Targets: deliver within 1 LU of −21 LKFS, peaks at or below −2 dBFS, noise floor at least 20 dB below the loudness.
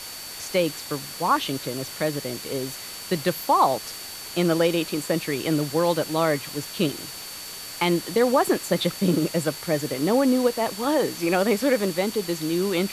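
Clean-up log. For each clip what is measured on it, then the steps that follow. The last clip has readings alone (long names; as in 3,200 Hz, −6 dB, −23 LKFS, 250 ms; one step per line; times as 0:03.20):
interfering tone 4,500 Hz; level of the tone −40 dBFS; background noise floor −37 dBFS; target noise floor −45 dBFS; integrated loudness −24.5 LKFS; sample peak −8.0 dBFS; target loudness −21.0 LKFS
→ notch filter 4,500 Hz, Q 30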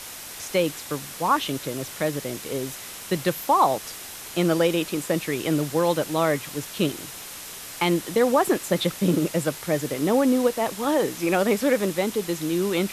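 interfering tone none found; background noise floor −39 dBFS; target noise floor −44 dBFS
→ broadband denoise 6 dB, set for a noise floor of −39 dBFS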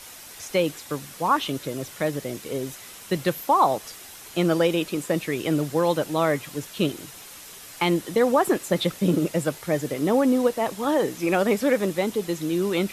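background noise floor −43 dBFS; target noise floor −45 dBFS
→ broadband denoise 6 dB, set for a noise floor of −43 dBFS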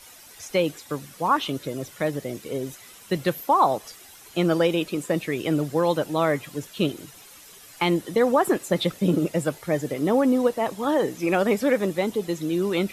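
background noise floor −48 dBFS; integrated loudness −24.5 LKFS; sample peak −8.0 dBFS; target loudness −21.0 LKFS
→ level +3.5 dB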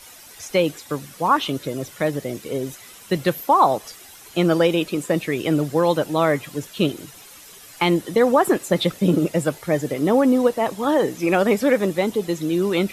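integrated loudness −21.0 LKFS; sample peak −4.5 dBFS; background noise floor −44 dBFS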